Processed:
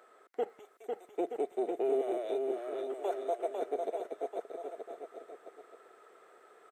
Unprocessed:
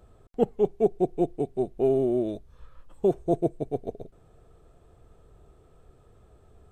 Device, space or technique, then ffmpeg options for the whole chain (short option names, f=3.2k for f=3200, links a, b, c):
laptop speaker: -filter_complex "[0:a]asettb=1/sr,asplit=3[a][b][c];[a]atrim=end=2.014[d];[b]atrim=start=2.01:end=3.62,asetpts=PTS-STARTPTS,afade=t=in:d=0.004:c=qsin,afade=t=out:st=1.606:d=0.004:c=qsin,highpass=f=560:w=0.5412,highpass=f=560:w=1.3066[e];[c]atrim=start=3.616[f];[d][e]acrossfade=d=0.004:c1=hsin:c2=qsin[g];[g][f]acrossfade=d=0.004:c1=qsin:c2=hsin,highpass=f=380:w=0.5412,highpass=f=380:w=1.3066,equalizer=f=1.4k:t=o:w=0.6:g=9,equalizer=f=2k:t=o:w=0.34:g=10.5,alimiter=limit=-23.5dB:level=0:latency=1:release=35,asettb=1/sr,asplit=3[h][i][j];[h]atrim=end=0.594[k];[i]atrim=start=0.59:end=1.16,asetpts=PTS-STARTPTS,afade=t=in:d=0.004:c=qsin,afade=t=out:st=0.566:d=0.004:c=qsin,aderivative[l];[j]atrim=start=1.156[m];[k][l]acrossfade=d=0.004:c1=hsin:c2=qsin[n];[n][m]acrossfade=d=0.004:c1=qsin:c2=hsin,aecho=1:1:500|925|1286|1593|1854:0.631|0.398|0.251|0.158|0.1"